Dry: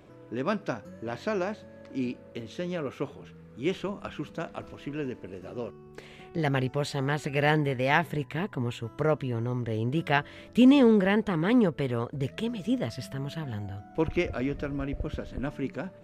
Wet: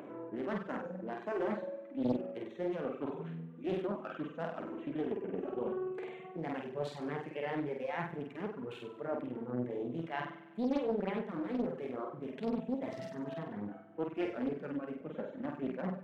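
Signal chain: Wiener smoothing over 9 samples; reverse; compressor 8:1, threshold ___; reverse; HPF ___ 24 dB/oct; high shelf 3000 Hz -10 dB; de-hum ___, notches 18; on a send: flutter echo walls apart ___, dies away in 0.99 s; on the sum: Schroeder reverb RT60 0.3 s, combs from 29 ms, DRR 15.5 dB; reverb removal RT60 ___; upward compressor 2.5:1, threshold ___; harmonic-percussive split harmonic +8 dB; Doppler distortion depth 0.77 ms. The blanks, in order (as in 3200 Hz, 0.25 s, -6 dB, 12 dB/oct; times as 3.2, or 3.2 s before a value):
-39 dBFS, 190 Hz, 376.9 Hz, 8.3 m, 1.3 s, -51 dBFS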